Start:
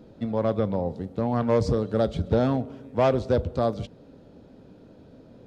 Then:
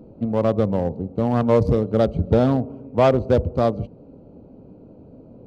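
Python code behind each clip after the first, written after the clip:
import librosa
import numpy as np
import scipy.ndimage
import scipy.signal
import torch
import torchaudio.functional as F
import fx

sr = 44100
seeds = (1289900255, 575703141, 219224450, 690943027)

y = fx.wiener(x, sr, points=25)
y = y * 10.0 ** (5.5 / 20.0)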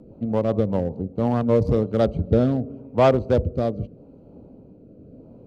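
y = fx.rotary_switch(x, sr, hz=5.0, then_hz=0.85, switch_at_s=0.73)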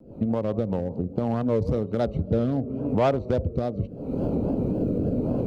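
y = fx.recorder_agc(x, sr, target_db=-12.5, rise_db_per_s=66.0, max_gain_db=30)
y = fx.vibrato(y, sr, rate_hz=3.6, depth_cents=94.0)
y = y * 10.0 ** (-5.5 / 20.0)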